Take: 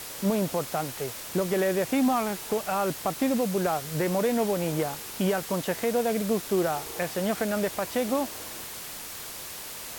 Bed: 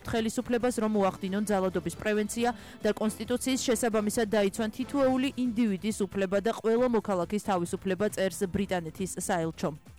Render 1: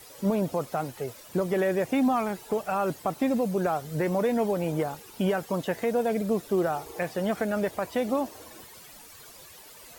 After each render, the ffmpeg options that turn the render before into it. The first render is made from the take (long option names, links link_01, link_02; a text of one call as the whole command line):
ffmpeg -i in.wav -af "afftdn=noise_reduction=13:noise_floor=-39" out.wav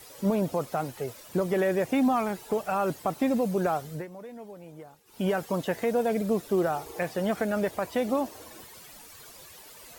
ffmpeg -i in.wav -filter_complex "[0:a]asplit=3[link_01][link_02][link_03];[link_01]atrim=end=4.07,asetpts=PTS-STARTPTS,afade=type=out:start_time=3.72:duration=0.35:curve=qsin:silence=0.133352[link_04];[link_02]atrim=start=4.07:end=5.05,asetpts=PTS-STARTPTS,volume=-17.5dB[link_05];[link_03]atrim=start=5.05,asetpts=PTS-STARTPTS,afade=type=in:duration=0.35:curve=qsin:silence=0.133352[link_06];[link_04][link_05][link_06]concat=n=3:v=0:a=1" out.wav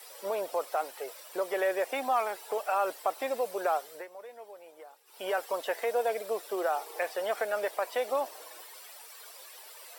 ffmpeg -i in.wav -af "highpass=frequency=480:width=0.5412,highpass=frequency=480:width=1.3066,bandreject=frequency=6600:width=9.1" out.wav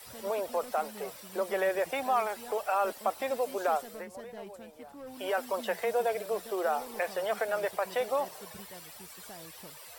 ffmpeg -i in.wav -i bed.wav -filter_complex "[1:a]volume=-20.5dB[link_01];[0:a][link_01]amix=inputs=2:normalize=0" out.wav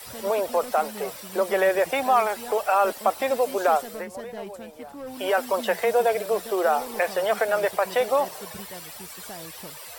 ffmpeg -i in.wav -af "volume=8dB" out.wav